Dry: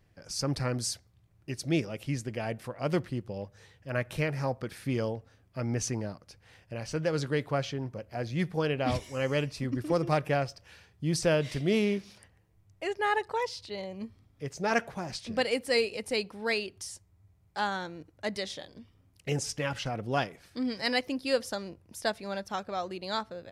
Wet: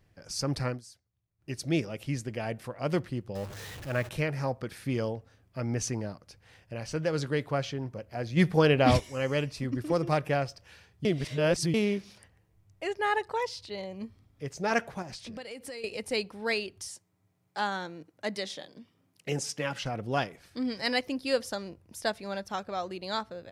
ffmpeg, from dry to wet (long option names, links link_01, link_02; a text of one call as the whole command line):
ffmpeg -i in.wav -filter_complex "[0:a]asettb=1/sr,asplit=3[link_01][link_02][link_03];[link_01]atrim=end=3.354[link_04];[link_02]atrim=start=3.35:end=4.09,asetpts=PTS-STARTPTS,afade=type=in:duration=0.004:curve=qsin,afade=type=out:start_time=0.736:duration=0.004:curve=qsin,aeval=exprs='val(0)+0.5*0.0126*sgn(val(0))':channel_layout=same[link_05];[link_03]atrim=start=4.086[link_06];[link_04][link_05]acrossfade=duration=0.004:curve1=hsin:curve2=qsin[link_07];[link_07][link_06]acrossfade=duration=0.004:curve1=qsin:curve2=hsin,asplit=3[link_08][link_09][link_10];[link_08]afade=type=out:start_time=8.36:duration=0.02[link_11];[link_09]acontrast=88,afade=type=in:start_time=8.36:duration=0.02,afade=type=out:start_time=8.99:duration=0.02[link_12];[link_10]afade=type=in:start_time=8.99:duration=0.02[link_13];[link_11][link_12][link_13]amix=inputs=3:normalize=0,asettb=1/sr,asplit=3[link_14][link_15][link_16];[link_14]atrim=end=15.024[link_17];[link_15]atrim=start=15.02:end=15.84,asetpts=PTS-STARTPTS,afade=type=in:duration=0.004:curve=qsin,afade=type=out:start_time=0.816:duration=0.004:curve=qsin,acompressor=threshold=-38dB:ratio=8:attack=3.2:release=140:knee=1:detection=peak[link_18];[link_16]atrim=start=15.836[link_19];[link_17][link_18]acrossfade=duration=0.004:curve1=hsin:curve2=qsin[link_20];[link_20][link_19]acrossfade=duration=0.004:curve1=qsin:curve2=hsin,asettb=1/sr,asplit=3[link_21][link_22][link_23];[link_21]atrim=end=16.884[link_24];[link_22]atrim=start=16.88:end=19.83,asetpts=PTS-STARTPTS,afade=type=in:duration=0.004:curve=qsin,afade=type=out:start_time=2.946:duration=0.004:curve=qsin,highpass=frequency=140:width=0.5412,highpass=frequency=140:width=1.3066[link_25];[link_23]atrim=start=19.826[link_26];[link_24][link_25]acrossfade=duration=0.004:curve1=hsin:curve2=qsin[link_27];[link_27][link_26]acrossfade=duration=0.004:curve1=qsin:curve2=hsin,asplit=5[link_28][link_29][link_30][link_31][link_32];[link_28]atrim=end=0.81,asetpts=PTS-STARTPTS,afade=type=out:start_time=0.68:duration=0.13:silence=0.11885[link_33];[link_29]atrim=start=0.81:end=1.38,asetpts=PTS-STARTPTS,volume=-18.5dB[link_34];[link_30]atrim=start=1.38:end=11.052,asetpts=PTS-STARTPTS,afade=type=in:duration=0.13:silence=0.11885[link_35];[link_31]atrim=start=11.048:end=11.742,asetpts=PTS-STARTPTS,areverse[link_36];[link_32]atrim=start=11.738[link_37];[link_33][link_34][link_35]concat=n=3:v=0:a=1[link_38];[link_38][link_36]acrossfade=duration=0.004:curve1=hsin:curve2=hsin[link_39];[link_39][link_37]acrossfade=duration=0.004:curve1=hsin:curve2=hsin" out.wav